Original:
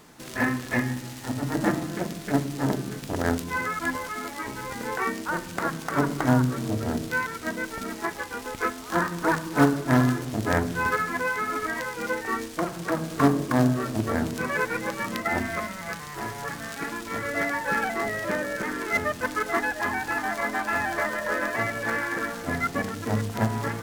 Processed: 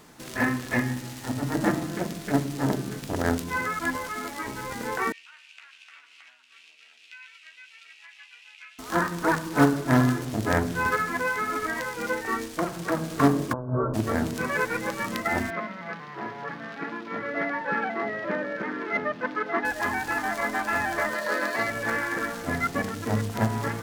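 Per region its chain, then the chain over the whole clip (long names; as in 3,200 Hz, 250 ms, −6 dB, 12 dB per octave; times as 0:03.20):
0:05.12–0:08.79: downward compressor 4 to 1, threshold −26 dBFS + four-pole ladder band-pass 2,800 Hz, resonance 75% + double-tracking delay 13 ms −5.5 dB
0:13.53–0:13.94: compressor whose output falls as the input rises −25 dBFS, ratio −0.5 + Butterworth low-pass 1,400 Hz 72 dB per octave + comb filter 2 ms, depth 50%
0:15.50–0:19.65: high-pass filter 150 Hz 24 dB per octave + high-frequency loss of the air 280 metres
0:21.14–0:21.69: high-pass filter 180 Hz + parametric band 4,300 Hz +9 dB 0.3 octaves
whole clip: no processing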